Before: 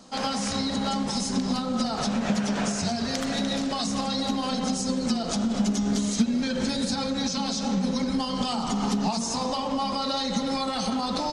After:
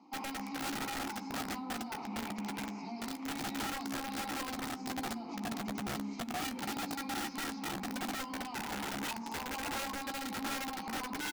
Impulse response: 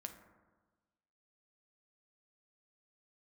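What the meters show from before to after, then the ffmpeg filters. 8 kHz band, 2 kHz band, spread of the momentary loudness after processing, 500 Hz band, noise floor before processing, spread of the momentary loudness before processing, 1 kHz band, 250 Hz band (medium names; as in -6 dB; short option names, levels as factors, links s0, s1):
-11.0 dB, -3.0 dB, 3 LU, -14.0 dB, -30 dBFS, 2 LU, -9.0 dB, -14.5 dB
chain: -filter_complex "[0:a]highpass=210,equalizer=f=320:t=q:w=4:g=-5,equalizer=f=620:t=q:w=4:g=5,equalizer=f=1100:t=q:w=4:g=5,equalizer=f=3400:t=q:w=4:g=-9,equalizer=f=4800:t=q:w=4:g=5,lowpass=f=6700:w=0.5412,lowpass=f=6700:w=1.3066,alimiter=limit=0.1:level=0:latency=1:release=218,asplit=3[s0][s1][s2];[s0]bandpass=f=300:t=q:w=8,volume=1[s3];[s1]bandpass=f=870:t=q:w=8,volume=0.501[s4];[s2]bandpass=f=2240:t=q:w=8,volume=0.355[s5];[s3][s4][s5]amix=inputs=3:normalize=0,aeval=exprs='(mod(70.8*val(0)+1,2)-1)/70.8':c=same,asplit=2[s6][s7];[s7]adelay=14,volume=0.282[s8];[s6][s8]amix=inputs=2:normalize=0,asplit=2[s9][s10];[1:a]atrim=start_sample=2205[s11];[s10][s11]afir=irnorm=-1:irlink=0,volume=0.531[s12];[s9][s12]amix=inputs=2:normalize=0,volume=1.19"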